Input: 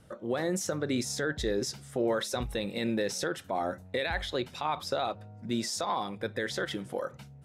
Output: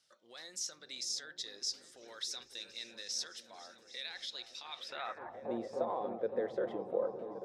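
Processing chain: repeats that get brighter 0.28 s, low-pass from 200 Hz, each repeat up 1 oct, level -3 dB; band-pass sweep 5000 Hz -> 500 Hz, 4.65–5.54; gain +1.5 dB

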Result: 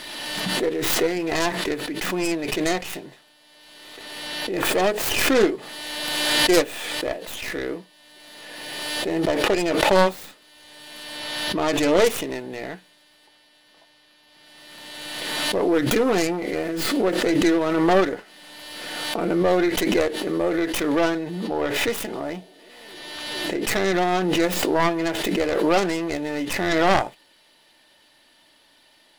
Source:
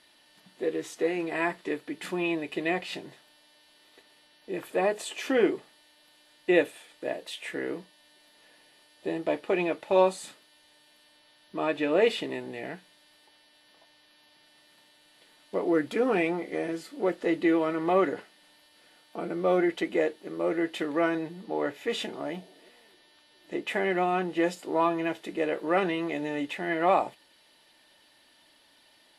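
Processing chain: tracing distortion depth 0.42 ms; backwards sustainer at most 27 dB/s; gain +4 dB

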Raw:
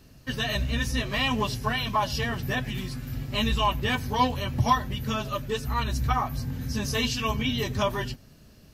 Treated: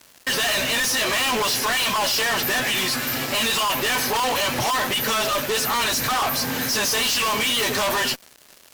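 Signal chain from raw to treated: HPF 570 Hz 12 dB/oct; fuzz box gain 49 dB, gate -56 dBFS; gain -7.5 dB

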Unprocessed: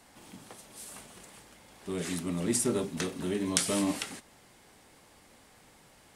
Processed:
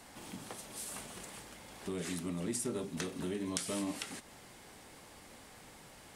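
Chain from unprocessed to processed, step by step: compressor 2.5:1, threshold -43 dBFS, peak gain reduction 15 dB; gain +3.5 dB

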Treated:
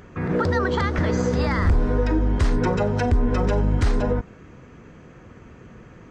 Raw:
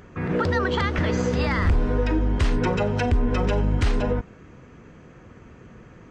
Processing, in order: dynamic EQ 2800 Hz, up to -8 dB, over -48 dBFS, Q 1.9; gain +1.5 dB

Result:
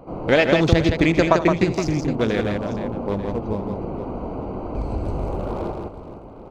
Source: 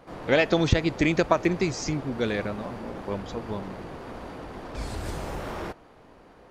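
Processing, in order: Wiener smoothing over 25 samples; tapped delay 79/165/467/889 ms -15/-5/-15.5/-19 dB; in parallel at +2.5 dB: compressor, threshold -35 dBFS, peak gain reduction 20 dB; on the sum: gain +3 dB

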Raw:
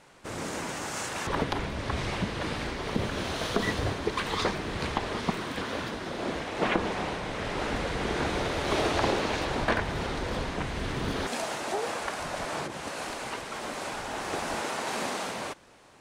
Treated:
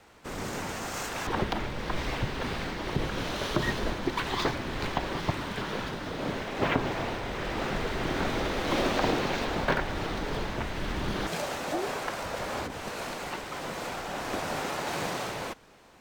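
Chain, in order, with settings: frequency shift -71 Hz; decimation joined by straight lines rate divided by 2×

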